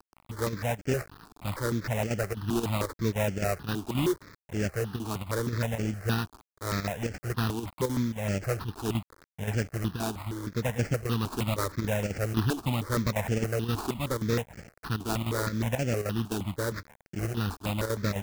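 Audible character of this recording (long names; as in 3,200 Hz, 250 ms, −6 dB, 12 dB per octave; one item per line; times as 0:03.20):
a quantiser's noise floor 8 bits, dither none
chopped level 3.8 Hz, depth 60%, duty 85%
aliases and images of a low sample rate 3,200 Hz, jitter 20%
notches that jump at a steady rate 6.4 Hz 540–3,800 Hz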